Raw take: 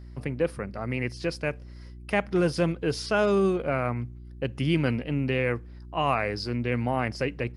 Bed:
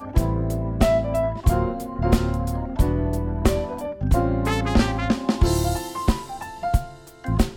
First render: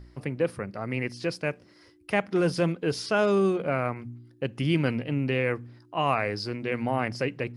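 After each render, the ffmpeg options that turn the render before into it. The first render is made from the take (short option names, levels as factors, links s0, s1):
-af "bandreject=f=60:t=h:w=4,bandreject=f=120:t=h:w=4,bandreject=f=180:t=h:w=4,bandreject=f=240:t=h:w=4"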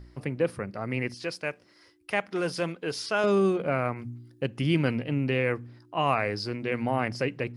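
-filter_complex "[0:a]asettb=1/sr,asplit=3[s0][s1][s2];[s0]atrim=end=1.144[s3];[s1]atrim=start=1.14:end=3.24,asetpts=PTS-STARTPTS,afade=t=in:d=0.004:c=qsin,afade=t=out:st=2.096:d=0.004:c=qsin,lowshelf=f=390:g=-10[s4];[s2]atrim=start=3.236[s5];[s3][s4]acrossfade=d=0.004:c1=hsin:c2=qsin[s6];[s6][s5]acrossfade=d=0.004:c1=qsin:c2=hsin,asettb=1/sr,asplit=3[s7][s8][s9];[s7]atrim=end=3.984[s10];[s8]atrim=start=3.98:end=4.46,asetpts=PTS-STARTPTS,afade=t=in:d=0.004:c=qsin,afade=t=out:st=0.476:d=0.004:c=qsin,bass=f=250:g=2,treble=f=4000:g=5[s11];[s9]atrim=start=4.456[s12];[s10][s11]acrossfade=d=0.004:c1=hsin:c2=qsin[s13];[s13][s12]acrossfade=d=0.004:c1=qsin:c2=hsin"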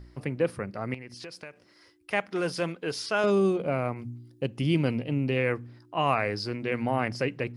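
-filter_complex "[0:a]asettb=1/sr,asplit=3[s0][s1][s2];[s0]atrim=end=0.944[s3];[s1]atrim=start=0.94:end=2.11,asetpts=PTS-STARTPTS,afade=t=in:d=0.004:c=qsin,afade=t=out:st=1.166:d=0.004:c=qsin,acompressor=threshold=0.0126:ratio=6:attack=3.2:release=140:knee=1:detection=peak[s4];[s2]atrim=start=2.106[s5];[s3][s4]acrossfade=d=0.004:c1=hsin:c2=qsin[s6];[s6][s5]acrossfade=d=0.004:c1=qsin:c2=hsin,asettb=1/sr,asplit=3[s7][s8][s9];[s7]atrim=end=3.304[s10];[s8]atrim=start=3.3:end=5.37,asetpts=PTS-STARTPTS,afade=t=in:d=0.004:c=qsin,afade=t=out:st=2.066:d=0.004:c=qsin,equalizer=f=1600:t=o:w=0.92:g=-7[s11];[s9]atrim=start=5.366[s12];[s10][s11]acrossfade=d=0.004:c1=hsin:c2=qsin[s13];[s13][s12]acrossfade=d=0.004:c1=qsin:c2=hsin"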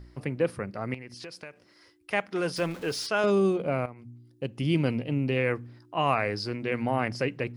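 -filter_complex "[0:a]asettb=1/sr,asplit=3[s0][s1][s2];[s0]atrim=end=2.564[s3];[s1]atrim=start=2.56:end=3.07,asetpts=PTS-STARTPTS,afade=t=in:d=0.004:c=qsin,afade=t=out:st=0.506:d=0.004:c=qsin,aeval=exprs='val(0)+0.5*0.0106*sgn(val(0))':c=same[s4];[s2]atrim=start=3.066[s5];[s3][s4]acrossfade=d=0.004:c1=hsin:c2=qsin[s6];[s6][s5]acrossfade=d=0.004:c1=qsin:c2=hsin,asplit=2[s7][s8];[s7]atrim=end=3.86,asetpts=PTS-STARTPTS,afade=t=out:st=3.856:d=0.004:c=hsin:silence=0.211349[s9];[s8]atrim=start=3.86,asetpts=PTS-STARTPTS,afade=t=in:d=0.93:silence=0.211349[s10];[s9][s10]concat=n=2:v=0:a=1"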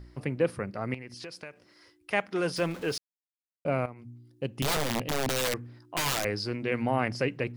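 -filter_complex "[0:a]asettb=1/sr,asplit=3[s0][s1][s2];[s0]atrim=end=4.624[s3];[s1]atrim=start=4.62:end=6.25,asetpts=PTS-STARTPTS,afade=t=in:d=0.004:c=qsin,afade=t=out:st=1.626:d=0.004:c=qsin,aeval=exprs='(mod(13.3*val(0)+1,2)-1)/13.3':c=same[s4];[s2]atrim=start=6.246[s5];[s3][s4]acrossfade=d=0.004:c1=hsin:c2=qsin[s6];[s6][s5]acrossfade=d=0.004:c1=qsin:c2=hsin,asplit=3[s7][s8][s9];[s7]atrim=end=2.98,asetpts=PTS-STARTPTS,afade=t=out:st=2.976:d=0.004:c=hsin[s10];[s8]atrim=start=2.98:end=3.65,asetpts=PTS-STARTPTS,volume=0[s11];[s9]atrim=start=3.65,asetpts=PTS-STARTPTS,afade=t=in:d=0.004:c=hsin[s12];[s10][s11][s12]concat=n=3:v=0:a=1"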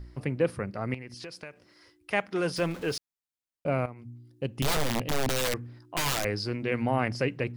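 -af "lowshelf=f=84:g=7"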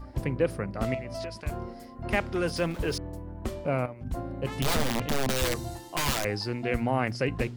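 -filter_complex "[1:a]volume=0.188[s0];[0:a][s0]amix=inputs=2:normalize=0"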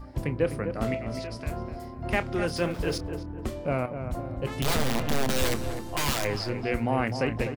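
-filter_complex "[0:a]asplit=2[s0][s1];[s1]adelay=27,volume=0.224[s2];[s0][s2]amix=inputs=2:normalize=0,asplit=2[s3][s4];[s4]adelay=252,lowpass=f=1400:p=1,volume=0.422,asplit=2[s5][s6];[s6]adelay=252,lowpass=f=1400:p=1,volume=0.44,asplit=2[s7][s8];[s8]adelay=252,lowpass=f=1400:p=1,volume=0.44,asplit=2[s9][s10];[s10]adelay=252,lowpass=f=1400:p=1,volume=0.44,asplit=2[s11][s12];[s12]adelay=252,lowpass=f=1400:p=1,volume=0.44[s13];[s5][s7][s9][s11][s13]amix=inputs=5:normalize=0[s14];[s3][s14]amix=inputs=2:normalize=0"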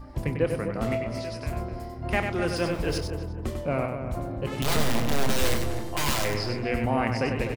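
-filter_complex "[0:a]asplit=2[s0][s1];[s1]adelay=26,volume=0.224[s2];[s0][s2]amix=inputs=2:normalize=0,aecho=1:1:97:0.501"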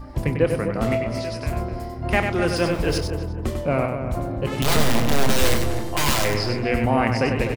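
-af "volume=1.88"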